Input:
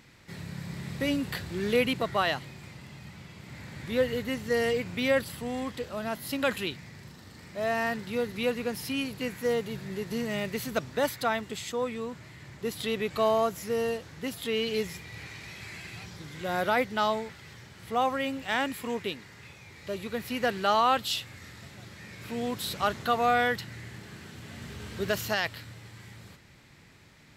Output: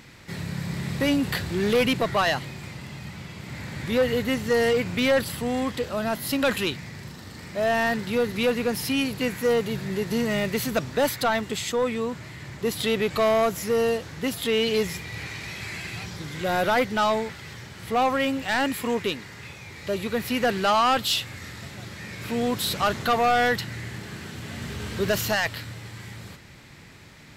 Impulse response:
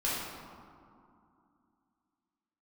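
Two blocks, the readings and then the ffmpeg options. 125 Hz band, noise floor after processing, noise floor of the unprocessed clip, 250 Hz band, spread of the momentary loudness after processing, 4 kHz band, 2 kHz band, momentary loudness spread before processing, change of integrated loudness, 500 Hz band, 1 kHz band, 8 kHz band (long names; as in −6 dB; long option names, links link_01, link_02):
+7.0 dB, −43 dBFS, −51 dBFS, +6.5 dB, 16 LU, +6.0 dB, +5.0 dB, 20 LU, +5.0 dB, +5.5 dB, +4.0 dB, +7.5 dB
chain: -af "asoftclip=type=tanh:threshold=-23.5dB,volume=8dB"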